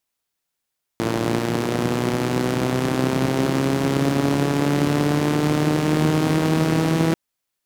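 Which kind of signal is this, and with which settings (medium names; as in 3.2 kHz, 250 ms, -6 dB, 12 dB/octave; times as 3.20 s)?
four-cylinder engine model, changing speed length 6.14 s, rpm 3400, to 4900, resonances 170/280 Hz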